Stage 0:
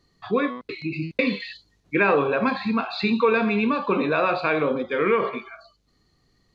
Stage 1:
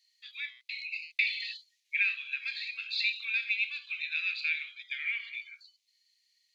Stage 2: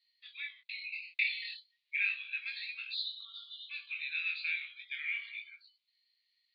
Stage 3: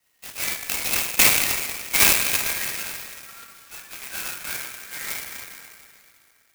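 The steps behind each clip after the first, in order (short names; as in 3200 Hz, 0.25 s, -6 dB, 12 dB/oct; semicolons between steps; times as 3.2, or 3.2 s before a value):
steep high-pass 2100 Hz 48 dB/oct
spectral delete 2.93–3.7, 1400–2900 Hz; chorus 0.35 Hz, delay 17 ms, depth 6.7 ms; elliptic band-pass 1000–4200 Hz, stop band 40 dB
low-pass sweep 2800 Hz -> 1400 Hz, 1.53–3.47; reverb RT60 3.5 s, pre-delay 4 ms, DRR -2 dB; clock jitter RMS 0.091 ms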